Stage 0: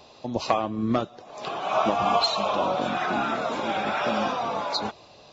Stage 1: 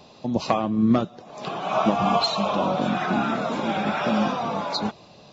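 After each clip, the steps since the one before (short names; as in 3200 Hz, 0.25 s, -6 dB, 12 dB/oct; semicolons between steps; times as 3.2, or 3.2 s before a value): bell 180 Hz +10.5 dB 1.1 oct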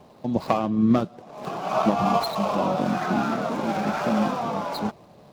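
median filter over 15 samples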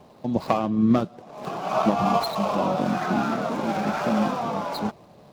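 nothing audible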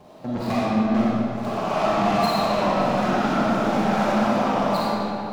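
soft clip -24.5 dBFS, distortion -8 dB; reverb RT60 2.6 s, pre-delay 5 ms, DRR -6.5 dB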